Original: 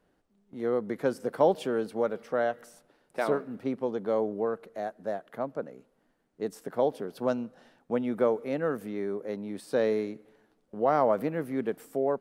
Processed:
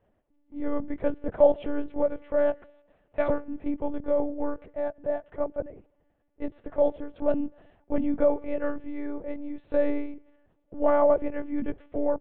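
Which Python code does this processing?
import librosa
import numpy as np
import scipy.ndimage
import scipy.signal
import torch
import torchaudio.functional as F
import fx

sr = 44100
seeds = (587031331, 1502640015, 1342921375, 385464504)

y = fx.cabinet(x, sr, low_hz=180.0, low_slope=12, high_hz=3000.0, hz=(230.0, 620.0, 1400.0), db=(9, 7, -5))
y = fx.vibrato(y, sr, rate_hz=2.2, depth_cents=22.0)
y = fx.lpc_monotone(y, sr, seeds[0], pitch_hz=290.0, order=10)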